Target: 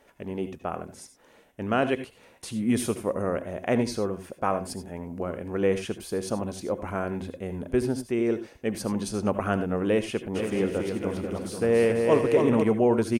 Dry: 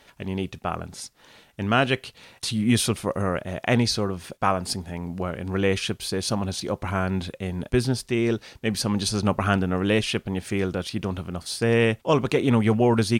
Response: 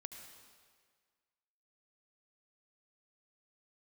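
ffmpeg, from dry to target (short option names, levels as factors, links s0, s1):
-filter_complex "[0:a]equalizer=f=125:t=o:w=1:g=-5,equalizer=f=250:t=o:w=1:g=3,equalizer=f=500:t=o:w=1:g=6,equalizer=f=4000:t=o:w=1:g=-10,asplit=3[s0][s1][s2];[s0]afade=t=out:st=10.34:d=0.02[s3];[s1]aecho=1:1:280|490|647.5|765.6|854.2:0.631|0.398|0.251|0.158|0.1,afade=t=in:st=10.34:d=0.02,afade=t=out:st=12.62:d=0.02[s4];[s2]afade=t=in:st=12.62:d=0.02[s5];[s3][s4][s5]amix=inputs=3:normalize=0[s6];[1:a]atrim=start_sample=2205,atrim=end_sample=4410[s7];[s6][s7]afir=irnorm=-1:irlink=0"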